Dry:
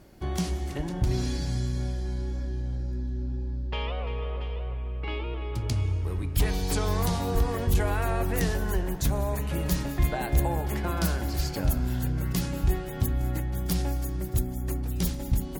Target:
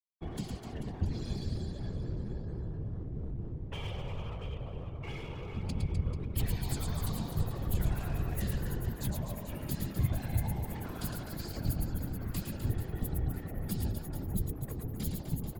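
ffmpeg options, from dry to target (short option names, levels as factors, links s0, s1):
-filter_complex "[0:a]afftfilt=real='re*gte(hypot(re,im),0.0112)':imag='im*gte(hypot(re,im),0.0112)':win_size=1024:overlap=0.75,equalizer=f=5800:w=5.1:g=-13.5,aecho=1:1:110|253|438.9|680.6|994.7:0.631|0.398|0.251|0.158|0.1,aeval=exprs='sgn(val(0))*max(abs(val(0))-0.01,0)':c=same,afftfilt=real='hypot(re,im)*cos(2*PI*random(0))':imag='hypot(re,im)*sin(2*PI*random(1))':win_size=512:overlap=0.75,acrossover=split=220|3000[s0][s1][s2];[s1]acompressor=threshold=0.00708:ratio=10[s3];[s0][s3][s2]amix=inputs=3:normalize=0"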